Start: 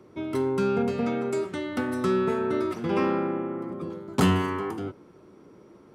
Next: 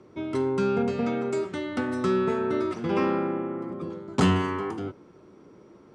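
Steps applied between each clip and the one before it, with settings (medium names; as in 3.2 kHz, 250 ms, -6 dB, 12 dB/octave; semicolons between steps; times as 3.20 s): low-pass 8.4 kHz 24 dB/octave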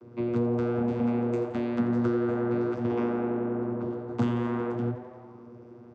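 compression 3:1, threshold -29 dBFS, peak gain reduction 9.5 dB; vocoder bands 16, saw 119 Hz; frequency-shifting echo 86 ms, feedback 62%, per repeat +130 Hz, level -14.5 dB; trim +4.5 dB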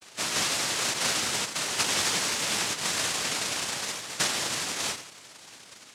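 noise-vocoded speech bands 1; trim -1.5 dB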